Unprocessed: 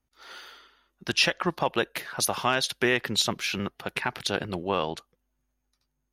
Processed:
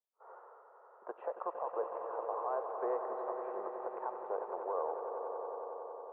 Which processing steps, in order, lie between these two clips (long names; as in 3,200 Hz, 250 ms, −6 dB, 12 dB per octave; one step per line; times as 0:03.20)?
noise gate −55 dBFS, range −15 dB
elliptic band-pass filter 450–1,100 Hz, stop band 70 dB
in parallel at +1 dB: downward compressor, threshold −47 dBFS, peak gain reduction 23.5 dB
on the sum: brickwall limiter −22 dBFS, peak gain reduction 9 dB
high-frequency loss of the air 380 metres
on a send: echo that builds up and dies away 92 ms, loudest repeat 5, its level −10 dB
on the sum: level −3.5 dB